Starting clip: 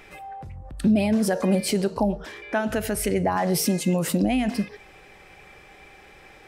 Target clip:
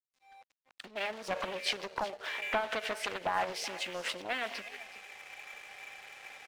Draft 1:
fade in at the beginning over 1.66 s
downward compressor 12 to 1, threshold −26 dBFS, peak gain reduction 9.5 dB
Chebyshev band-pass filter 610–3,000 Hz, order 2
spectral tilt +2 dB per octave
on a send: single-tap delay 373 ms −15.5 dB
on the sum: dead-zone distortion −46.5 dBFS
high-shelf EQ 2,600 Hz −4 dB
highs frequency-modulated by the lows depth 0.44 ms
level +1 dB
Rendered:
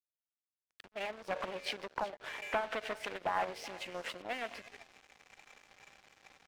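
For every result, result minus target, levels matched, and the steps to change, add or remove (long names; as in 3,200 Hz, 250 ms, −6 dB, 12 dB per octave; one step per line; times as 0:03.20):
dead-zone distortion: distortion +9 dB; 4,000 Hz band −4.0 dB
change: dead-zone distortion −56.5 dBFS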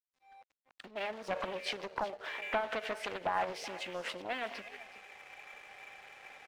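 4,000 Hz band −4.0 dB
change: high-shelf EQ 2,600 Hz +5 dB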